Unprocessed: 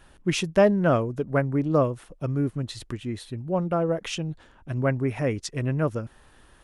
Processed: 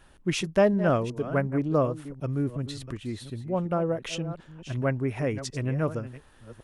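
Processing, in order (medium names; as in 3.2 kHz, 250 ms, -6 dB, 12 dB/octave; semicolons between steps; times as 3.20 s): chunks repeated in reverse 367 ms, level -13 dB; trim -2.5 dB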